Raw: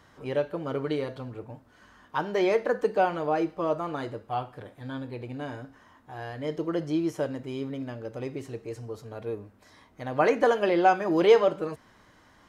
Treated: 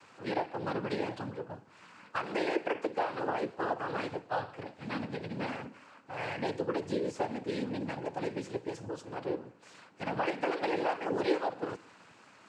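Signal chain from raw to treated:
low-shelf EQ 140 Hz −10.5 dB
downward compressor 5 to 1, threshold −32 dBFS, peak gain reduction 16.5 dB
dynamic equaliser 2,000 Hz, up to +4 dB, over −50 dBFS, Q 1.1
cochlear-implant simulation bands 8
on a send: convolution reverb RT60 0.65 s, pre-delay 103 ms, DRR 23.5 dB
on the sum: level +2 dB

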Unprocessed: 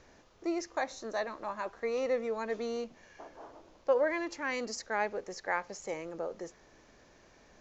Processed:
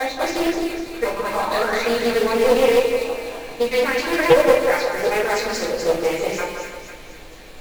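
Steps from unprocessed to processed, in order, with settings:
slices reordered back to front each 116 ms, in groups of 8
flat-topped bell 3,100 Hz +9.5 dB 1.1 octaves
in parallel at +2.5 dB: brickwall limiter −26.5 dBFS, peak gain reduction 10.5 dB
on the sum: log-companded quantiser 4 bits
sound drawn into the spectrogram rise, 0:01.38–0:01.85, 730–2,600 Hz −33 dBFS
echo with a time of its own for lows and highs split 1,600 Hz, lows 167 ms, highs 249 ms, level −5 dB
rectangular room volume 41 cubic metres, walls mixed, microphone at 2.1 metres
highs frequency-modulated by the lows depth 0.27 ms
level −5.5 dB

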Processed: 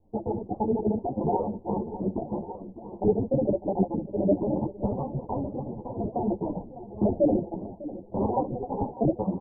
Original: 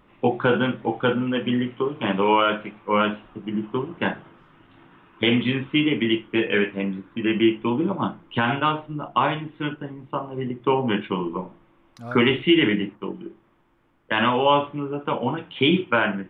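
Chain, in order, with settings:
pitch shifter gated in a rhythm −11 semitones, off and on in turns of 65 ms
rotating-speaker cabinet horn 5 Hz, later 0.9 Hz, at 0:05.36
single-tap delay 1,043 ms −15 dB
wrong playback speed 45 rpm record played at 78 rpm
Butterworth low-pass 910 Hz 72 dB per octave
low-shelf EQ 140 Hz +11 dB
on a send: single-tap delay 1,155 ms −13 dB
on the sum: automatic gain control gain up to 7 dB
string-ensemble chorus
level −6 dB

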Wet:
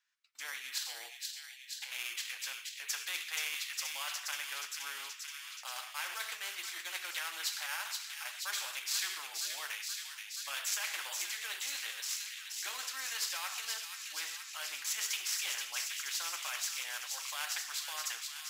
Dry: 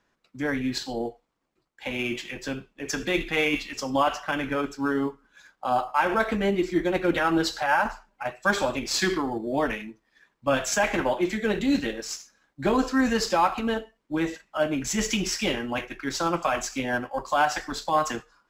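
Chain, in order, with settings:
noise gate −48 dBFS, range −16 dB
Bessel high-pass filter 2,300 Hz, order 4
0:00.85–0:01.92: compressor whose output falls as the input rises −45 dBFS, ratio −1
on a send: delay with a high-pass on its return 477 ms, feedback 61%, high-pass 2,900 Hz, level −7 dB
on the sum: every bin compressed towards the loudest bin 2 to 1
level −3.5 dB

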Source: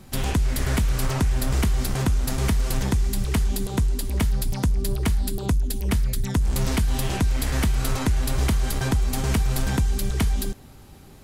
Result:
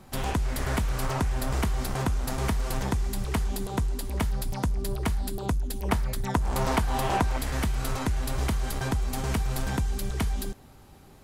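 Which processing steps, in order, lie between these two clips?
parametric band 870 Hz +7.5 dB 2 octaves, from 0:05.83 +15 dB, from 0:07.38 +4.5 dB
level −6 dB

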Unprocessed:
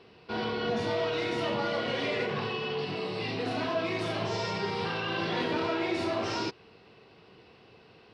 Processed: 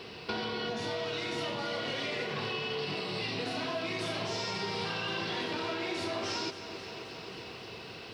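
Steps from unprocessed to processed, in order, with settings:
high-shelf EQ 3,100 Hz +10.5 dB
downward compressor 10 to 1, threshold −41 dBFS, peak gain reduction 16.5 dB
feedback echo at a low word length 265 ms, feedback 80%, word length 12 bits, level −13 dB
level +8.5 dB

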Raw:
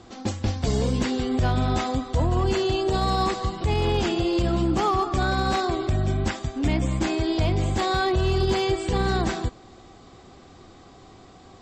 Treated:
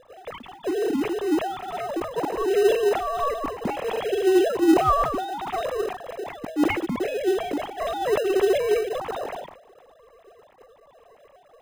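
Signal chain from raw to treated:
three sine waves on the formant tracks
tilt shelving filter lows +3.5 dB
notch filter 1,500 Hz, Q 5
in parallel at −9 dB: decimation without filtering 39×
on the sum: level that may fall only so fast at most 83 dB per second
level −4.5 dB

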